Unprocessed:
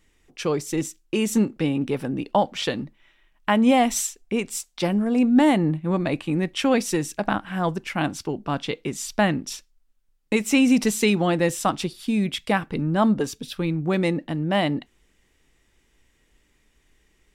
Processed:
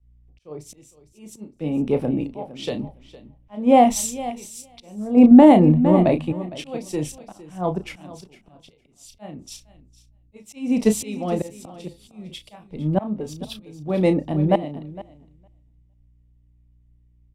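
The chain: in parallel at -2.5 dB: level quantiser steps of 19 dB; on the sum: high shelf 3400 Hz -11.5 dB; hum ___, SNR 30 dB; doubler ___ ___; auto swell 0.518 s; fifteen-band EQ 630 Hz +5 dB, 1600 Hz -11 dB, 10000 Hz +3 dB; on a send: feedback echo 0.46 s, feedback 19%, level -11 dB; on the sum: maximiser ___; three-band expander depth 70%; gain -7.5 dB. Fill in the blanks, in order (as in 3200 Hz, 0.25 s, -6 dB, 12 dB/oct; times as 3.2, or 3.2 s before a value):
60 Hz, 33 ms, -9 dB, +8.5 dB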